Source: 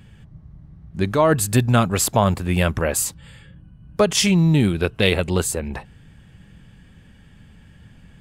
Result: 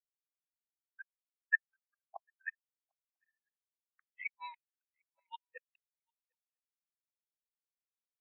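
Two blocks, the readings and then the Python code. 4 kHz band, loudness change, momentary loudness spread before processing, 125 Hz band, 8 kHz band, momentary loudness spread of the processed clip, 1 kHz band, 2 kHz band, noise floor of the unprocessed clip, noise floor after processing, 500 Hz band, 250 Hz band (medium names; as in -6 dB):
-37.0 dB, -20.5 dB, 11 LU, under -40 dB, under -40 dB, 21 LU, -27.5 dB, -12.0 dB, -49 dBFS, under -85 dBFS, under -40 dB, under -40 dB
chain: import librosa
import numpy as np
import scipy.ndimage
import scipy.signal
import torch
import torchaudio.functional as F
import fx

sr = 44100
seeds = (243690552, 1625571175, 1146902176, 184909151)

p1 = scipy.signal.sosfilt(scipy.signal.butter(4, 530.0, 'highpass', fs=sr, output='sos'), x)
p2 = fx.env_lowpass_down(p1, sr, base_hz=850.0, full_db=-18.0)
p3 = fx.dereverb_blind(p2, sr, rt60_s=0.87)
p4 = fx.dynamic_eq(p3, sr, hz=670.0, q=3.6, threshold_db=-35.0, ratio=4.0, max_db=-3)
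p5 = fx.rider(p4, sr, range_db=4, speed_s=0.5)
p6 = fx.leveller(p5, sr, passes=2)
p7 = fx.filter_sweep_bandpass(p6, sr, from_hz=1600.0, to_hz=3700.0, start_s=3.07, end_s=6.92, q=2.0)
p8 = fx.gate_flip(p7, sr, shuts_db=-24.0, range_db=-37)
p9 = p8 + fx.echo_swing(p8, sr, ms=997, ratio=3, feedback_pct=44, wet_db=-11.5, dry=0)
p10 = fx.spectral_expand(p9, sr, expansion=4.0)
y = p10 * 10.0 ** (4.0 / 20.0)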